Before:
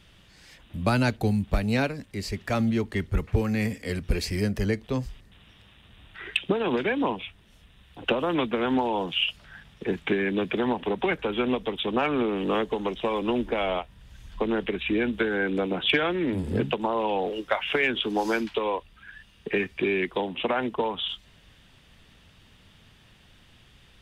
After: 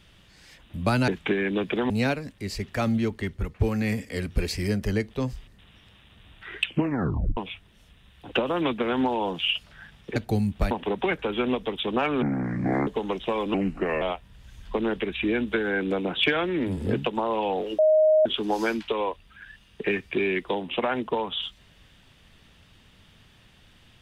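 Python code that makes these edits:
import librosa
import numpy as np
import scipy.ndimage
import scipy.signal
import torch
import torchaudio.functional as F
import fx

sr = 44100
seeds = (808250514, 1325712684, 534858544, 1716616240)

y = fx.edit(x, sr, fx.swap(start_s=1.08, length_s=0.55, other_s=9.89, other_length_s=0.82),
    fx.fade_out_to(start_s=2.76, length_s=0.57, floor_db=-7.0),
    fx.tape_stop(start_s=6.39, length_s=0.71),
    fx.speed_span(start_s=12.22, length_s=0.41, speed=0.63),
    fx.speed_span(start_s=13.3, length_s=0.38, speed=0.8),
    fx.bleep(start_s=17.45, length_s=0.47, hz=623.0, db=-15.0), tone=tone)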